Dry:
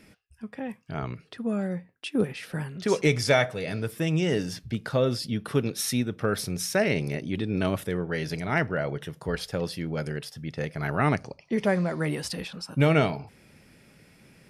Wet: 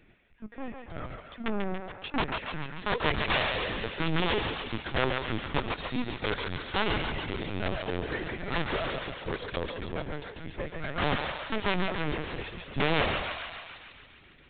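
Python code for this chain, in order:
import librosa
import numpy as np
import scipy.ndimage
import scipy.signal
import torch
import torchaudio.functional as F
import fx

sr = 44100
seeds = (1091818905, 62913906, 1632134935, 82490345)

y = fx.cheby_harmonics(x, sr, harmonics=(8,), levels_db=(-16,), full_scale_db=-9.0)
y = (np.mod(10.0 ** (15.0 / 20.0) * y + 1.0, 2.0) - 1.0) / 10.0 ** (15.0 / 20.0)
y = fx.echo_thinned(y, sr, ms=143, feedback_pct=70, hz=530.0, wet_db=-3.0)
y = fx.lpc_vocoder(y, sr, seeds[0], excitation='pitch_kept', order=16)
y = y * librosa.db_to_amplitude(-4.0)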